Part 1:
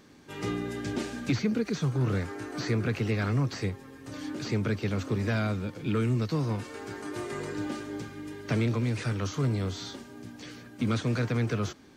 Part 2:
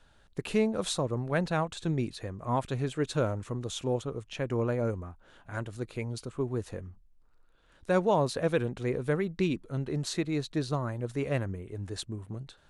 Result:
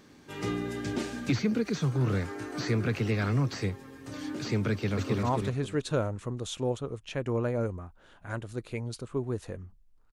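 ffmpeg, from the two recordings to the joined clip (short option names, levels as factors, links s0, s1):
-filter_complex "[0:a]apad=whole_dur=10.12,atrim=end=10.12,atrim=end=5.232[s0];[1:a]atrim=start=2.468:end=7.36[s1];[s0][s1]acrossfade=d=0.004:c1=hsin:c2=hsin,asplit=2[s2][s3];[s3]afade=t=in:st=4.71:d=0.01,afade=t=out:st=5.23:d=0.01,aecho=0:1:260|520|780|1040:0.707946|0.176986|0.0442466|0.0110617[s4];[s2][s4]amix=inputs=2:normalize=0"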